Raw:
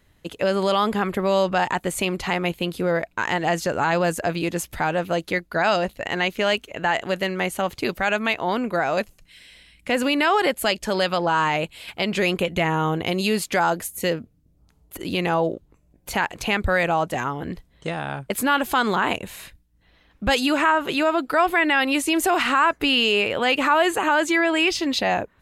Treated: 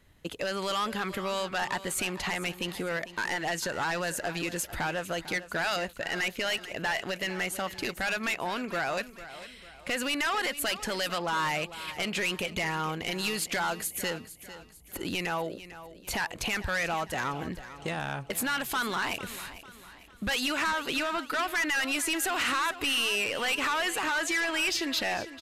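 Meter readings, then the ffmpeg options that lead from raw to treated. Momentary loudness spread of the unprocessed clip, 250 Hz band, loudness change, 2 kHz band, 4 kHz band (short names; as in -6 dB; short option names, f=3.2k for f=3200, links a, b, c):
8 LU, -11.0 dB, -8.0 dB, -6.0 dB, -5.0 dB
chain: -filter_complex "[0:a]acrossover=split=1200[a][b];[a]acompressor=threshold=-30dB:ratio=6[c];[c][b]amix=inputs=2:normalize=0,asoftclip=type=hard:threshold=-23.5dB,aecho=1:1:449|898|1347|1796:0.188|0.081|0.0348|0.015,aresample=32000,aresample=44100,volume=-1.5dB"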